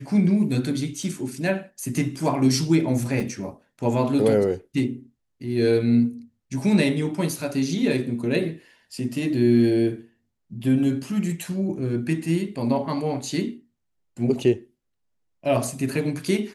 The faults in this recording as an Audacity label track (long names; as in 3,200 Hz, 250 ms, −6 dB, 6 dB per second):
1.030000	1.030000	drop-out 2.2 ms
3.200000	3.200000	drop-out 3.6 ms